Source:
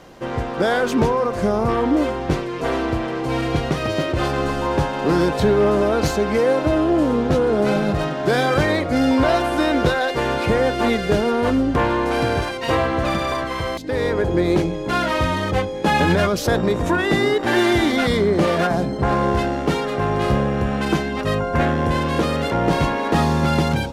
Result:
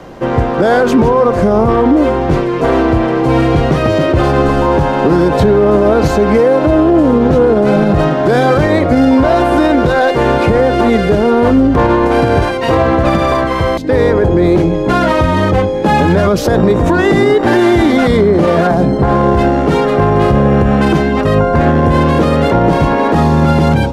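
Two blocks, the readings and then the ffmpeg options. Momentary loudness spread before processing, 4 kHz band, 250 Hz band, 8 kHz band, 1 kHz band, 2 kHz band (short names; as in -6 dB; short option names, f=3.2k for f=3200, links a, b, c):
5 LU, +2.5 dB, +9.5 dB, n/a, +8.0 dB, +5.0 dB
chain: -filter_complex "[0:a]highshelf=f=2.1k:g=-9.5,acrossover=split=120|1000|5100[a][b][c][d];[c]asoftclip=type=tanh:threshold=-25.5dB[e];[a][b][e][d]amix=inputs=4:normalize=0,alimiter=level_in=13.5dB:limit=-1dB:release=50:level=0:latency=1,volume=-1dB"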